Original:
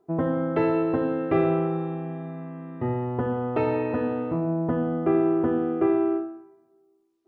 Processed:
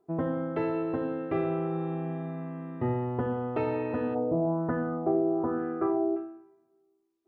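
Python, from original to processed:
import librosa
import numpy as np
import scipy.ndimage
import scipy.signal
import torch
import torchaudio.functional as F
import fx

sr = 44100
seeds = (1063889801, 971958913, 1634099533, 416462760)

y = fx.rider(x, sr, range_db=5, speed_s=0.5)
y = fx.filter_lfo_lowpass(y, sr, shape='sine', hz=1.1, low_hz=590.0, high_hz=1700.0, q=2.9, at=(4.14, 6.15), fade=0.02)
y = y * 10.0 ** (-5.5 / 20.0)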